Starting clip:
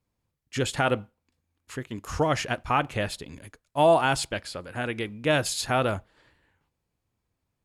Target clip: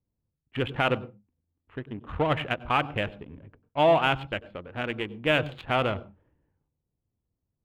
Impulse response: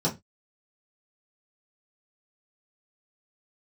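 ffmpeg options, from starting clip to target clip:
-filter_complex "[0:a]adynamicsmooth=sensitivity=3:basefreq=590,highshelf=frequency=4000:width_type=q:width=3:gain=-9.5,asplit=2[link_01][link_02];[1:a]atrim=start_sample=2205,asetrate=40572,aresample=44100,adelay=93[link_03];[link_02][link_03]afir=irnorm=-1:irlink=0,volume=-30dB[link_04];[link_01][link_04]amix=inputs=2:normalize=0,volume=-1.5dB"

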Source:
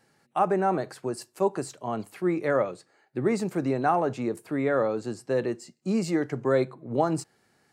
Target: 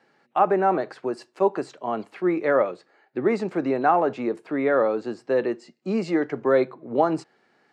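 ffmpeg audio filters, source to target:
ffmpeg -i in.wav -af "highpass=250,lowpass=3400,volume=4.5dB" out.wav

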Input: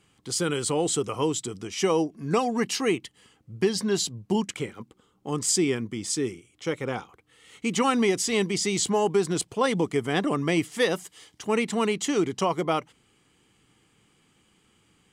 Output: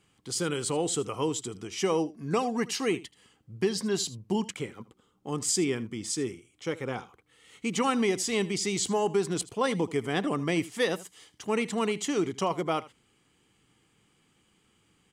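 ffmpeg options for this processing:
ffmpeg -i in.wav -af "aecho=1:1:79:0.119,volume=-3.5dB" out.wav

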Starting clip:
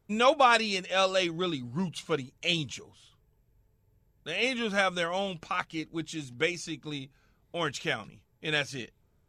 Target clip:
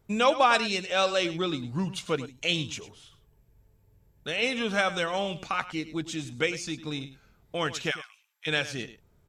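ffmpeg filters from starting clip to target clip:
ffmpeg -i in.wav -filter_complex "[0:a]asplit=3[link_01][link_02][link_03];[link_01]afade=type=out:start_time=7.9:duration=0.02[link_04];[link_02]highpass=frequency=1200:width=0.5412,highpass=frequency=1200:width=1.3066,afade=type=in:start_time=7.9:duration=0.02,afade=type=out:start_time=8.46:duration=0.02[link_05];[link_03]afade=type=in:start_time=8.46:duration=0.02[link_06];[link_04][link_05][link_06]amix=inputs=3:normalize=0,asplit=2[link_07][link_08];[link_08]acompressor=threshold=-36dB:ratio=6,volume=-0.5dB[link_09];[link_07][link_09]amix=inputs=2:normalize=0,aecho=1:1:103:0.188,volume=-1dB" out.wav

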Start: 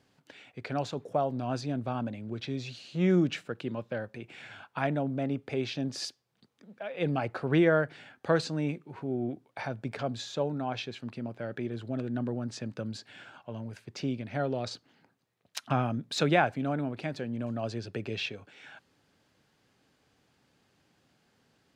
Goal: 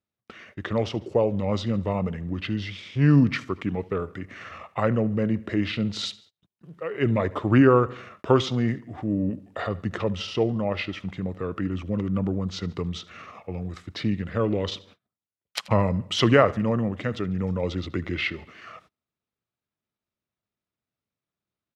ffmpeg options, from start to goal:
ffmpeg -i in.wav -filter_complex "[0:a]asplit=2[link_01][link_02];[link_02]aecho=0:1:76|152|228|304:0.1|0.049|0.024|0.0118[link_03];[link_01][link_03]amix=inputs=2:normalize=0,agate=range=-29dB:threshold=-58dB:ratio=16:detection=peak,asetrate=35002,aresample=44100,atempo=1.25992,volume=7dB" out.wav

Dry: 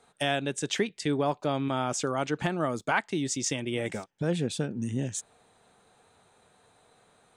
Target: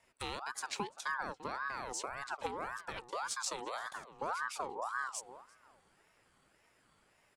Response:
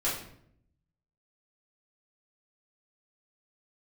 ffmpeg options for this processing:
-filter_complex "[0:a]acrossover=split=350|3000[link_01][link_02][link_03];[link_02]acompressor=threshold=-44dB:ratio=3[link_04];[link_01][link_04][link_03]amix=inputs=3:normalize=0,aeval=exprs='0.133*(cos(1*acos(clip(val(0)/0.133,-1,1)))-cos(1*PI/2))+0.00299*(cos(4*acos(clip(val(0)/0.133,-1,1)))-cos(4*PI/2))+0.00106*(cos(7*acos(clip(val(0)/0.133,-1,1)))-cos(7*PI/2))':channel_layout=same,asplit=2[link_05][link_06];[link_06]adelay=343,lowpass=frequency=1900:poles=1,volume=-15dB,asplit=2[link_07][link_08];[link_08]adelay=343,lowpass=frequency=1900:poles=1,volume=0.24,asplit=2[link_09][link_10];[link_10]adelay=343,lowpass=frequency=1900:poles=1,volume=0.24[link_11];[link_07][link_09][link_11]amix=inputs=3:normalize=0[link_12];[link_05][link_12]amix=inputs=2:normalize=0,aeval=exprs='val(0)*sin(2*PI*1000*n/s+1000*0.4/1.8*sin(2*PI*1.8*n/s))':channel_layout=same,volume=-4.5dB"

